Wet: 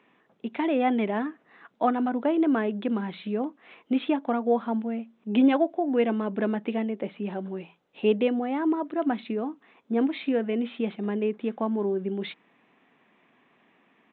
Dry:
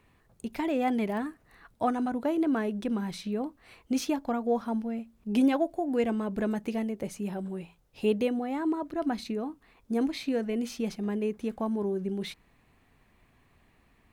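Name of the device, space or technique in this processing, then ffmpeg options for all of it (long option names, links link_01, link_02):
Bluetooth headset: -af "highpass=frequency=200:width=0.5412,highpass=frequency=200:width=1.3066,aresample=8000,aresample=44100,volume=4dB" -ar 16000 -c:a sbc -b:a 64k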